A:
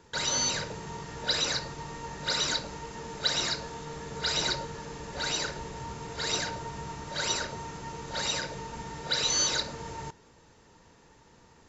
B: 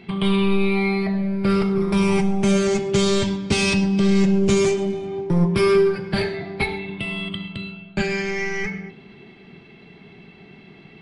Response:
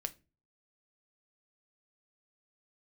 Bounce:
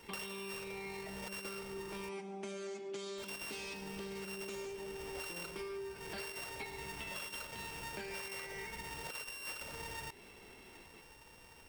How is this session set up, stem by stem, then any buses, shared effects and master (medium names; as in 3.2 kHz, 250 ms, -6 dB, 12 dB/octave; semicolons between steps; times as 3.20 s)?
-0.5 dB, 0.00 s, muted 2.09–3.18 s, no send, sorted samples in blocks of 16 samples; peaking EQ 180 Hz -8.5 dB 2.4 oct; compressor with a negative ratio -32 dBFS, ratio -0.5
-10.5 dB, 0.00 s, no send, high-pass 260 Hz 24 dB/octave; gate with hold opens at -39 dBFS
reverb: none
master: compression 12:1, threshold -41 dBFS, peak gain reduction 17.5 dB